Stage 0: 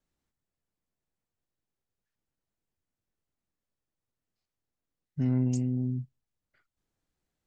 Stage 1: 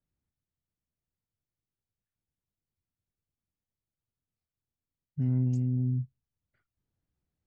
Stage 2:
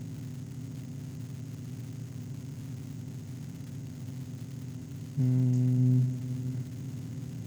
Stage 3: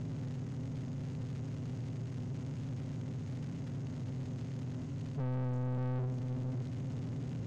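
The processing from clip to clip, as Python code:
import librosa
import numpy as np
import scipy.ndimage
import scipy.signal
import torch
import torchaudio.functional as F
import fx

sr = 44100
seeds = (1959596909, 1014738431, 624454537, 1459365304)

y1 = fx.lowpass(x, sr, hz=3800.0, slope=6)
y1 = fx.peak_eq(y1, sr, hz=89.0, db=12.5, octaves=2.6)
y1 = fx.rider(y1, sr, range_db=10, speed_s=0.5)
y1 = y1 * librosa.db_to_amplitude(-7.5)
y2 = fx.bin_compress(y1, sr, power=0.2)
y2 = fx.dmg_crackle(y2, sr, seeds[0], per_s=370.0, level_db=-43.0)
y2 = y2 + 10.0 ** (-10.0 / 20.0) * np.pad(y2, (int(586 * sr / 1000.0), 0))[:len(y2)]
y3 = 10.0 ** (-33.0 / 20.0) * np.tanh(y2 / 10.0 ** (-33.0 / 20.0))
y3 = fx.power_curve(y3, sr, exponent=0.7)
y3 = fx.air_absorb(y3, sr, metres=110.0)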